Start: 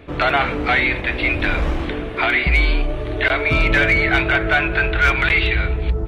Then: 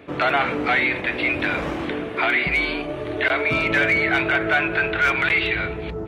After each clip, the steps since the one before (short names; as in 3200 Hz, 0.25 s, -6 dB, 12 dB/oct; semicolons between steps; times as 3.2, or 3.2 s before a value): HPF 150 Hz 12 dB/oct; bell 3900 Hz -2.5 dB; in parallel at -2 dB: limiter -14 dBFS, peak gain reduction 8.5 dB; on the sum: gain -5.5 dB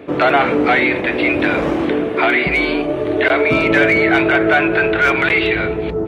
bell 380 Hz +8 dB 2.2 oct; gain +3 dB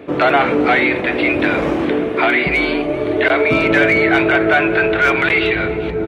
feedback echo 0.393 s, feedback 51%, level -20 dB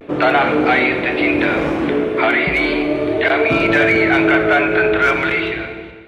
ending faded out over 1.05 s; vibrato 0.37 Hz 38 cents; Schroeder reverb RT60 1.5 s, combs from 27 ms, DRR 8 dB; gain -1 dB